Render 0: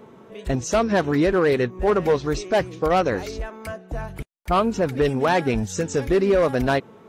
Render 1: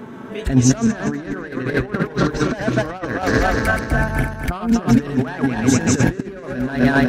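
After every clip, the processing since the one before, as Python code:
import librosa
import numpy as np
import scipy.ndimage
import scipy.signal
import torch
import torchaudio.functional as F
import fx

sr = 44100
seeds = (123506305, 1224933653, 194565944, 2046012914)

y = fx.reverse_delay_fb(x, sr, ms=124, feedback_pct=67, wet_db=-4)
y = fx.over_compress(y, sr, threshold_db=-24.0, ratio=-0.5)
y = fx.graphic_eq_31(y, sr, hz=(125, 250, 500, 1600), db=(6, 9, -5, 9))
y = y * 10.0 ** (3.5 / 20.0)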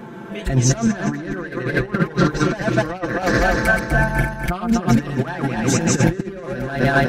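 y = x + 0.71 * np.pad(x, (int(5.8 * sr / 1000.0), 0))[:len(x)]
y = y * 10.0 ** (-1.0 / 20.0)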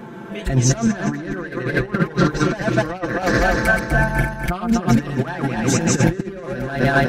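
y = x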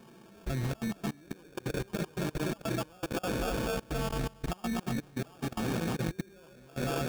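y = fx.level_steps(x, sr, step_db=23)
y = fx.sample_hold(y, sr, seeds[0], rate_hz=2000.0, jitter_pct=0)
y = y * 10.0 ** (-8.5 / 20.0)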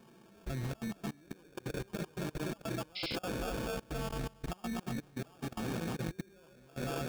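y = fx.spec_paint(x, sr, seeds[1], shape='noise', start_s=2.95, length_s=0.21, low_hz=2000.0, high_hz=5400.0, level_db=-35.0)
y = y * 10.0 ** (-5.0 / 20.0)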